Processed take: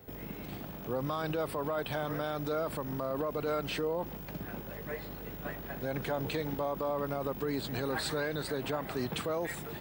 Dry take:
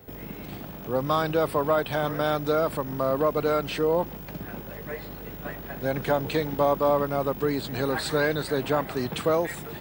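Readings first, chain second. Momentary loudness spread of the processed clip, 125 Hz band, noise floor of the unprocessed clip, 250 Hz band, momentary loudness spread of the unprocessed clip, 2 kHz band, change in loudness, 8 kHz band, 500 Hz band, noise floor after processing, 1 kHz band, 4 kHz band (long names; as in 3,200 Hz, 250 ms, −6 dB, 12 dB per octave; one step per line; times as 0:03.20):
8 LU, −6.5 dB, −40 dBFS, −7.0 dB, 13 LU, −7.5 dB, −9.0 dB, −4.5 dB, −9.5 dB, −44 dBFS, −9.5 dB, −5.5 dB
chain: brickwall limiter −20.5 dBFS, peak gain reduction 9 dB
level −4 dB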